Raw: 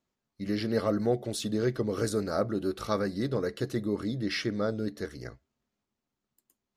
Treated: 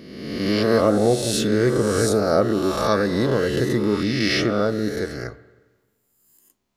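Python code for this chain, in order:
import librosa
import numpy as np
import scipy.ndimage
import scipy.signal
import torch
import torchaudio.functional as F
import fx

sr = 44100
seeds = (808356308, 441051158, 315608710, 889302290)

y = fx.spec_swells(x, sr, rise_s=1.26)
y = fx.rev_spring(y, sr, rt60_s=1.3, pass_ms=(43, 57), chirp_ms=60, drr_db=16.0)
y = y * librosa.db_to_amplitude(7.0)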